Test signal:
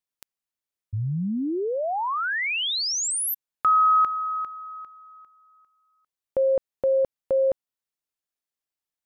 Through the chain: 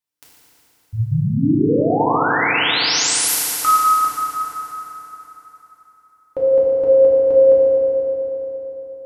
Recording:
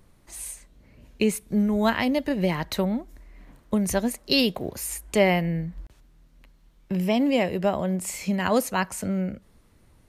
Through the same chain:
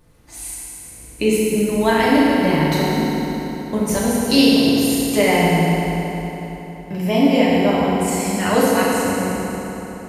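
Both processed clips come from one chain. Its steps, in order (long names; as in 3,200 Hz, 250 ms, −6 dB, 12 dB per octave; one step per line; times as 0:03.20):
feedback delay network reverb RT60 3.9 s, high-frequency decay 0.75×, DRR −8 dB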